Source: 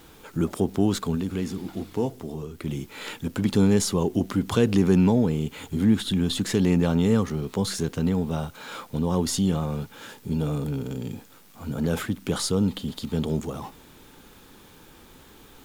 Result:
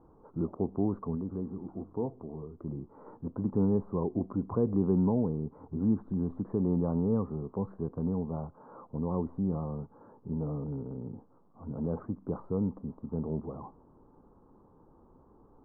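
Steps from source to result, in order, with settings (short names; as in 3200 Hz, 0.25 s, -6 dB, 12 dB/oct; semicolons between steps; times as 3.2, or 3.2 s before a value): elliptic low-pass 1100 Hz, stop band 60 dB; gain -7 dB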